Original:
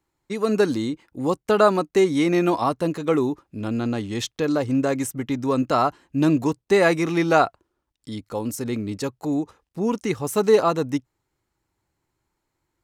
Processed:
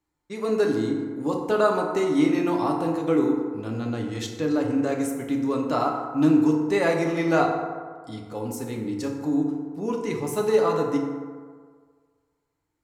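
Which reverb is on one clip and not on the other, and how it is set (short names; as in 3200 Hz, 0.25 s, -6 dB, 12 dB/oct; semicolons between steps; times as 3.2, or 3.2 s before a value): FDN reverb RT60 1.7 s, low-frequency decay 0.85×, high-frequency decay 0.4×, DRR 0 dB; gain -6.5 dB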